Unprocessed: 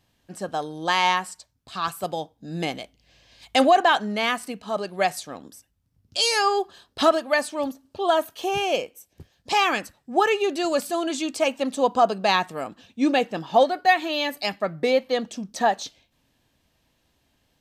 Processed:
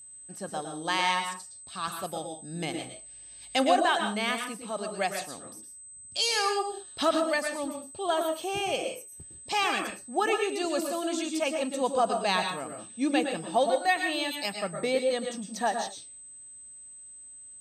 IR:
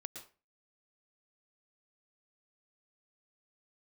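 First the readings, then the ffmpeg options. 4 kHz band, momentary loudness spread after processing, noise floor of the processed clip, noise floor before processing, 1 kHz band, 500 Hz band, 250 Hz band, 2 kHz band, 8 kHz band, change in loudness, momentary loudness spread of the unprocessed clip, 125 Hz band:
-4.0 dB, 18 LU, -48 dBFS, -69 dBFS, -6.5 dB, -5.5 dB, -4.5 dB, -5.0 dB, +0.5 dB, -5.5 dB, 13 LU, -5.0 dB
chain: -filter_complex "[0:a]equalizer=f=600:w=0.38:g=-3,aeval=exprs='val(0)+0.00891*sin(2*PI*8200*n/s)':c=same[s0];[1:a]atrim=start_sample=2205,afade=t=out:st=0.27:d=0.01,atrim=end_sample=12348[s1];[s0][s1]afir=irnorm=-1:irlink=0"

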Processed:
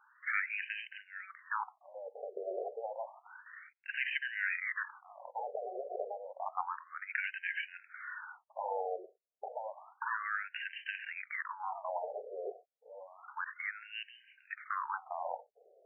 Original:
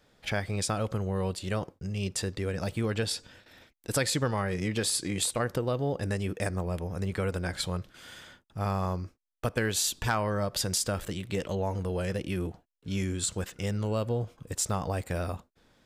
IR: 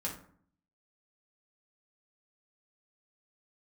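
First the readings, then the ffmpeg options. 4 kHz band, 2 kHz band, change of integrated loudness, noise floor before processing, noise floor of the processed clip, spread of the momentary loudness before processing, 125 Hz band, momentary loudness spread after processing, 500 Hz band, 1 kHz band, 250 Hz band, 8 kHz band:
-15.0 dB, +1.0 dB, -8.5 dB, -68 dBFS, -72 dBFS, 8 LU, under -40 dB, 13 LU, -10.0 dB, -2.5 dB, under -30 dB, under -40 dB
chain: -af "afftfilt=real='re*lt(hypot(re,im),0.0794)':imag='im*lt(hypot(re,im),0.0794)':win_size=1024:overlap=0.75,afftfilt=real='re*between(b*sr/1024,530*pow(2200/530,0.5+0.5*sin(2*PI*0.3*pts/sr))/1.41,530*pow(2200/530,0.5+0.5*sin(2*PI*0.3*pts/sr))*1.41)':imag='im*between(b*sr/1024,530*pow(2200/530,0.5+0.5*sin(2*PI*0.3*pts/sr))/1.41,530*pow(2200/530,0.5+0.5*sin(2*PI*0.3*pts/sr))*1.41)':win_size=1024:overlap=0.75,volume=2.51"

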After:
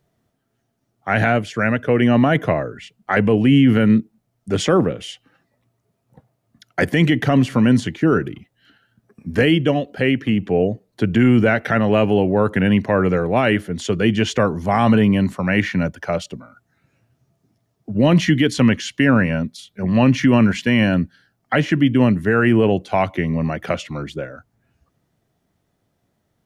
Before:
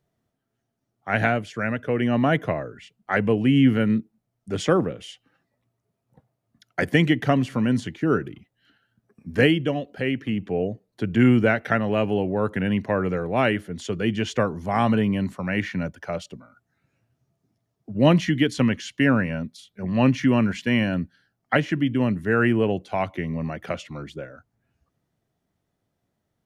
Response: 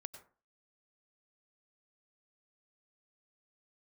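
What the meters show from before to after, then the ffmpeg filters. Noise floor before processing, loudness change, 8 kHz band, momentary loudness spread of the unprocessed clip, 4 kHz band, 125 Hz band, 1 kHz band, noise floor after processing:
-78 dBFS, +5.5 dB, +7.5 dB, 14 LU, +5.5 dB, +6.0 dB, +5.0 dB, -71 dBFS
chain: -af "alimiter=limit=0.211:level=0:latency=1:release=12,volume=2.37"

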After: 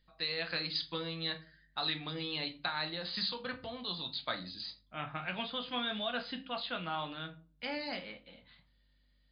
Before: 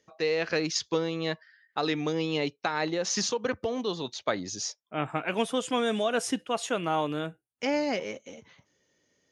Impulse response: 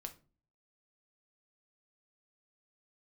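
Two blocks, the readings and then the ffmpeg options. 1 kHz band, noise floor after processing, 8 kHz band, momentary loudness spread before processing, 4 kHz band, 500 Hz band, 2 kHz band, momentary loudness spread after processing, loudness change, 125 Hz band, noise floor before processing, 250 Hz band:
-8.5 dB, -70 dBFS, under -40 dB, 7 LU, -1.0 dB, -14.0 dB, -5.5 dB, 9 LU, -7.5 dB, -8.0 dB, -75 dBFS, -12.0 dB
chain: -filter_complex "[0:a]aeval=exprs='val(0)+0.000794*(sin(2*PI*50*n/s)+sin(2*PI*2*50*n/s)/2+sin(2*PI*3*50*n/s)/3+sin(2*PI*4*50*n/s)/4+sin(2*PI*5*50*n/s)/5)':c=same,equalizer=f=400:t=o:w=0.67:g=-12,equalizer=f=1600:t=o:w=0.67:g=4,equalizer=f=4000:t=o:w=0.67:g=12[s0];[1:a]atrim=start_sample=2205[s1];[s0][s1]afir=irnorm=-1:irlink=0,volume=0.596" -ar 11025 -c:a libmp3lame -b:a 48k

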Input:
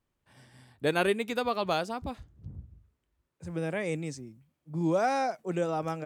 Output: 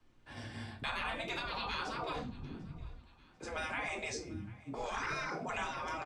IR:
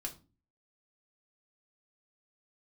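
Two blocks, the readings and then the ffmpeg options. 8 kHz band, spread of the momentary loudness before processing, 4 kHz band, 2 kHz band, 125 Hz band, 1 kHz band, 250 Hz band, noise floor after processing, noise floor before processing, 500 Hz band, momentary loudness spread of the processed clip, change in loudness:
-2.0 dB, 20 LU, -2.0 dB, -2.0 dB, -9.0 dB, -6.5 dB, -12.0 dB, -63 dBFS, -82 dBFS, -13.5 dB, 11 LU, -9.0 dB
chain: -filter_complex "[1:a]atrim=start_sample=2205[s0];[0:a][s0]afir=irnorm=-1:irlink=0,afreqshift=-23,acrossover=split=360|920[s1][s2][s3];[s3]acompressor=threshold=0.00398:ratio=5[s4];[s1][s2][s4]amix=inputs=3:normalize=0,asoftclip=type=tanh:threshold=0.0841,lowpass=5600,afftfilt=real='re*lt(hypot(re,im),0.0251)':imag='im*lt(hypot(re,im),0.0251)':win_size=1024:overlap=0.75,aecho=1:1:744|1488|2232:0.0708|0.0333|0.0156,asplit=2[s5][s6];[s6]alimiter=level_in=8.91:limit=0.0631:level=0:latency=1:release=30,volume=0.112,volume=0.794[s7];[s5][s7]amix=inputs=2:normalize=0,volume=2.51"

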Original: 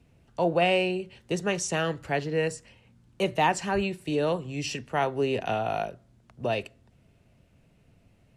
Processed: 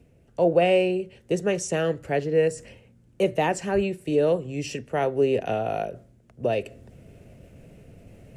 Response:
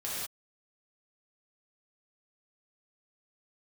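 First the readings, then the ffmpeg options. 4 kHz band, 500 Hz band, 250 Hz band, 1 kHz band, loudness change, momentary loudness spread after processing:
-3.0 dB, +5.5 dB, +3.0 dB, -1.0 dB, +3.0 dB, 10 LU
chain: -af "equalizer=f=500:t=o:w=1:g=7,equalizer=f=1000:t=o:w=1:g=-8,equalizer=f=4000:t=o:w=1:g=-7,areverse,acompressor=mode=upward:threshold=0.0126:ratio=2.5,areverse,volume=1.19"

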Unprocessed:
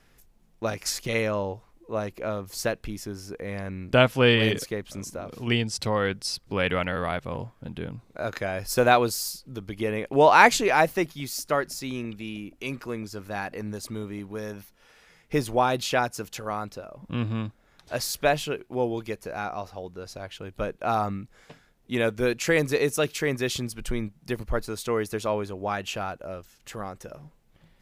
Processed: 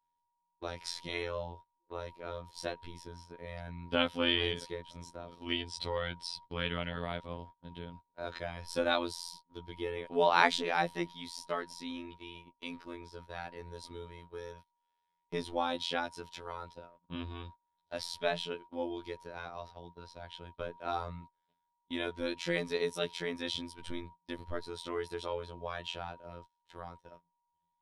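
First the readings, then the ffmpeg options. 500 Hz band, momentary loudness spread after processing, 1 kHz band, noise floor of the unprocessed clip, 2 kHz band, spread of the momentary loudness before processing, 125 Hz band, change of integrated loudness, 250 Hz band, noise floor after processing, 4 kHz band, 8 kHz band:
-11.0 dB, 17 LU, -10.5 dB, -61 dBFS, -10.5 dB, 17 LU, -14.0 dB, -10.0 dB, -11.0 dB, -83 dBFS, -5.0 dB, -16.0 dB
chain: -af "lowpass=f=9000:w=0.5412,lowpass=f=9000:w=1.3066,afftfilt=real='hypot(re,im)*cos(PI*b)':imag='0':win_size=2048:overlap=0.75,superequalizer=13b=2.24:15b=0.398,aeval=exprs='val(0)+0.00447*sin(2*PI*950*n/s)':c=same,agate=range=0.0501:threshold=0.00794:ratio=16:detection=peak,volume=0.447"

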